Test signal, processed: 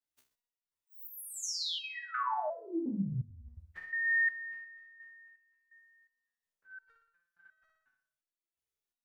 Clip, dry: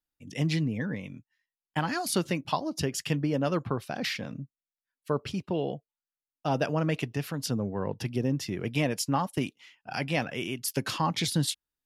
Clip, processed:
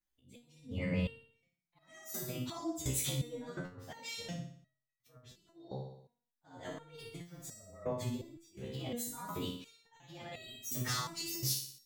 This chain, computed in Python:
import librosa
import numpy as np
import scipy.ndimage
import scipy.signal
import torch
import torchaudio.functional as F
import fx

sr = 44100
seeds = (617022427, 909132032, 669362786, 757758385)

y = fx.partial_stretch(x, sr, pct=110)
y = fx.low_shelf(y, sr, hz=63.0, db=4.5)
y = fx.over_compress(y, sr, threshold_db=-35.0, ratio=-1.0)
y = fx.room_flutter(y, sr, wall_m=10.2, rt60_s=0.58)
y = fx.auto_swell(y, sr, attack_ms=564.0)
y = fx.resonator_held(y, sr, hz=2.8, low_hz=65.0, high_hz=640.0)
y = y * librosa.db_to_amplitude(8.0)